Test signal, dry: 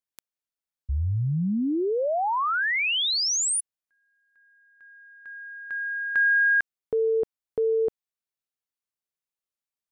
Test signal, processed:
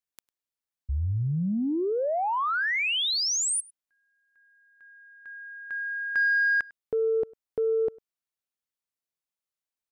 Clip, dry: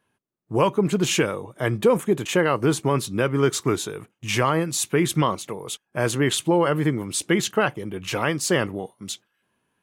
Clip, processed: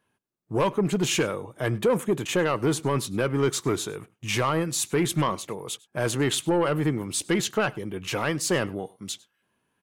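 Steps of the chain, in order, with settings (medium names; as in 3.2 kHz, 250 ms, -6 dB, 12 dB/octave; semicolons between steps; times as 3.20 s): saturation -13.5 dBFS; on a send: delay 101 ms -24 dB; on the sum: trim -1.5 dB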